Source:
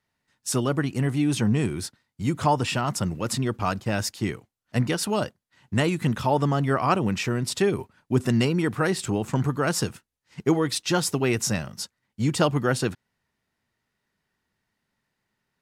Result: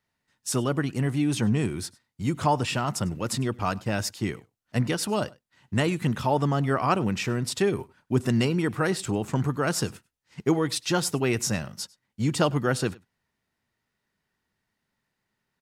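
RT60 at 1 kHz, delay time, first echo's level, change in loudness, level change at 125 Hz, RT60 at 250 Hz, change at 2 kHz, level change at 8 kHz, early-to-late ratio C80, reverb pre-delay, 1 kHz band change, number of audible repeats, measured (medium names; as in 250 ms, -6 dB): no reverb, 100 ms, -24.0 dB, -1.5 dB, -1.5 dB, no reverb, -1.5 dB, -1.5 dB, no reverb, no reverb, -1.5 dB, 1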